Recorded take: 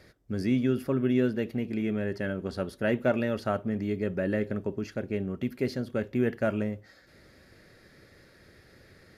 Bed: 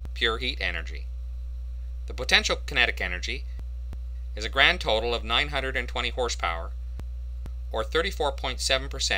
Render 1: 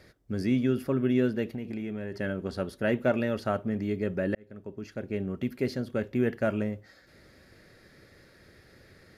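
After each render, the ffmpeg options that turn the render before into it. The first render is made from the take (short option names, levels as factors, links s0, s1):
-filter_complex "[0:a]asettb=1/sr,asplit=3[s0][s1][s2];[s0]atrim=end=1.534[s3];[s1]atrim=start=1.53:end=2.17,asetpts=PTS-STARTPTS,afade=t=in:d=0.004:c=qsin,afade=t=out:st=0.636:d=0.004:c=qsin,acompressor=threshold=0.0282:ratio=4:attack=3.2:release=140:knee=1:detection=peak[s4];[s2]atrim=start=2.166[s5];[s3][s4]acrossfade=d=0.004:c1=hsin:c2=qsin[s6];[s6][s5]acrossfade=d=0.004:c1=qsin:c2=hsin,asplit=2[s7][s8];[s7]atrim=end=4.35,asetpts=PTS-STARTPTS,afade=t=out:st=4.346:d=0.004:c=hsin[s9];[s8]atrim=start=4.35,asetpts=PTS-STARTPTS,afade=t=in:d=0.91[s10];[s9][s10]concat=n=2:v=0:a=1"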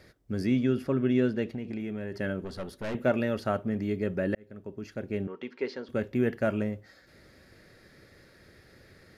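-filter_complex "[0:a]asettb=1/sr,asplit=3[s0][s1][s2];[s0]atrim=end=0.474[s3];[s1]atrim=start=0.47:end=1.8,asetpts=PTS-STARTPTS,afade=t=in:d=0.004:c=qsin,afade=t=out:st=1.326:d=0.004:c=qsin,lowpass=8200[s4];[s2]atrim=start=1.796[s5];[s3][s4]acrossfade=d=0.004:c1=hsin:c2=qsin[s6];[s6][s5]acrossfade=d=0.004:c1=qsin:c2=hsin,asettb=1/sr,asplit=3[s7][s8][s9];[s7]atrim=end=2.444[s10];[s8]atrim=start=2.44:end=2.95,asetpts=PTS-STARTPTS,afade=t=in:d=0.004:c=qsin,afade=t=out:st=0.506:d=0.004:c=qsin,aeval=exprs='(tanh(35.5*val(0)+0.35)-tanh(0.35))/35.5':c=same[s11];[s9]atrim=start=2.946[s12];[s10][s11]acrossfade=d=0.004:c1=hsin:c2=qsin[s13];[s13][s12]acrossfade=d=0.004:c1=qsin:c2=hsin,asettb=1/sr,asplit=3[s14][s15][s16];[s14]atrim=end=5.274[s17];[s15]atrim=start=5.27:end=5.89,asetpts=PTS-STARTPTS,afade=t=in:d=0.004:c=qsin,afade=t=out:st=0.616:d=0.004:c=qsin,highpass=430,equalizer=f=440:t=q:w=4:g=5,equalizer=f=650:t=q:w=4:g=-9,equalizer=f=940:t=q:w=4:g=8,equalizer=f=4400:t=q:w=4:g=-3,lowpass=f=5100:w=0.5412,lowpass=f=5100:w=1.3066[s18];[s16]atrim=start=5.886[s19];[s17][s18]acrossfade=d=0.004:c1=hsin:c2=qsin[s20];[s20][s19]acrossfade=d=0.004:c1=qsin:c2=hsin"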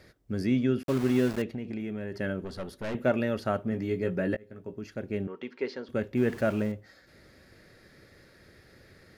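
-filter_complex "[0:a]asettb=1/sr,asplit=3[s0][s1][s2];[s0]atrim=end=0.834[s3];[s1]atrim=start=0.83:end=1.42,asetpts=PTS-STARTPTS,afade=t=in:d=0.004:c=qsin,afade=t=out:st=0.586:d=0.004:c=qsin,aeval=exprs='val(0)*gte(abs(val(0)),0.0211)':c=same[s4];[s2]atrim=start=1.416[s5];[s3][s4]acrossfade=d=0.004:c1=hsin:c2=qsin[s6];[s6][s5]acrossfade=d=0.004:c1=qsin:c2=hsin,asettb=1/sr,asplit=3[s7][s8][s9];[s7]atrim=end=3.704[s10];[s8]atrim=start=3.7:end=4.79,asetpts=PTS-STARTPTS,afade=t=in:d=0.004:c=qsin,afade=t=out:st=1.086:d=0.004:c=qsin,asplit=2[s11][s12];[s12]adelay=17,volume=0.473[s13];[s11][s13]amix=inputs=2:normalize=0,atrim=end_sample=48069[s14];[s9]atrim=start=4.786[s15];[s10][s14]acrossfade=d=0.004:c1=hsin:c2=qsin[s16];[s16][s15]acrossfade=d=0.004:c1=qsin:c2=hsin,asettb=1/sr,asplit=3[s17][s18][s19];[s17]atrim=end=6.174[s20];[s18]atrim=start=6.17:end=6.72,asetpts=PTS-STARTPTS,afade=t=in:d=0.004:c=qsin,afade=t=out:st=0.546:d=0.004:c=qsin,aeval=exprs='val(0)+0.5*0.00944*sgn(val(0))':c=same[s21];[s19]atrim=start=6.716[s22];[s20][s21]acrossfade=d=0.004:c1=hsin:c2=qsin[s23];[s23][s22]acrossfade=d=0.004:c1=qsin:c2=hsin"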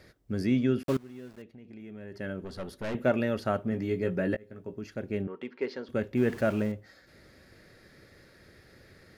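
-filter_complex "[0:a]asettb=1/sr,asplit=3[s0][s1][s2];[s0]atrim=end=5.224[s3];[s1]atrim=start=5.22:end=5.71,asetpts=PTS-STARTPTS,afade=t=in:d=0.004:c=qsin,afade=t=out:st=0.486:d=0.004:c=qsin,adynamicsmooth=sensitivity=5:basefreq=4100[s4];[s2]atrim=start=5.706[s5];[s3][s4]acrossfade=d=0.004:c1=hsin:c2=qsin[s6];[s6][s5]acrossfade=d=0.004:c1=qsin:c2=hsin,asplit=2[s7][s8];[s7]atrim=end=0.97,asetpts=PTS-STARTPTS,afade=t=out:st=0.966:d=0.004:c=hsin:silence=0.0841395[s9];[s8]atrim=start=0.97,asetpts=PTS-STARTPTS,afade=t=in:d=1.74:c=qua:silence=0.0841395[s10];[s9][s10]concat=n=2:v=0:a=1"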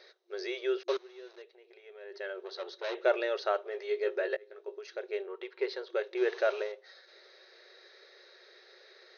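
-af "afftfilt=real='re*between(b*sr/4096,350,6500)':imag='im*between(b*sr/4096,350,6500)':win_size=4096:overlap=0.75,equalizer=f=3900:w=6.7:g=13.5"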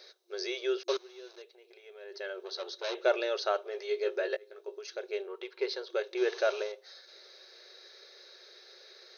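-af "bass=f=250:g=-1,treble=f=4000:g=11,bandreject=f=1900:w=11"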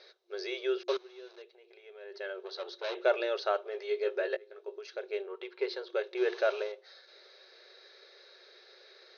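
-af "lowpass=3800,bandreject=f=60:t=h:w=6,bandreject=f=120:t=h:w=6,bandreject=f=180:t=h:w=6,bandreject=f=240:t=h:w=6,bandreject=f=300:t=h:w=6,bandreject=f=360:t=h:w=6"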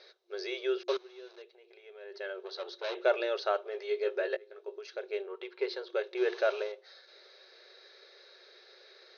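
-af anull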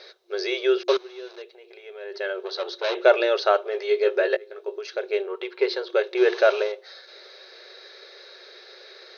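-af "volume=3.35"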